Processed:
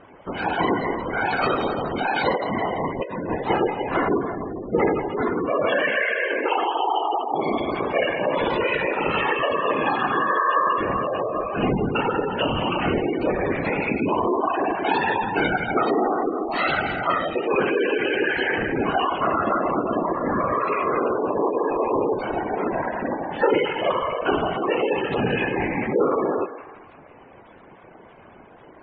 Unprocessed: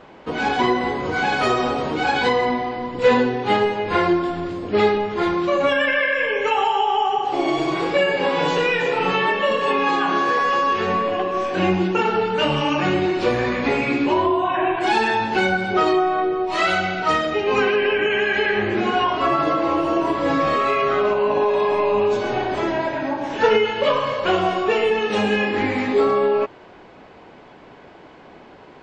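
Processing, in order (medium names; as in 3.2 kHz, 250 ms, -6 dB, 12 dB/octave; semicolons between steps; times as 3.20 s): 20.19–21.89 s: treble shelf 5.4 kHz -8.5 dB; thinning echo 168 ms, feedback 56%, high-pass 520 Hz, level -11 dB; 2.36–3.35 s: compressor with a negative ratio -23 dBFS, ratio -1; whisper effect; spectral gate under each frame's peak -20 dB strong; trim -3 dB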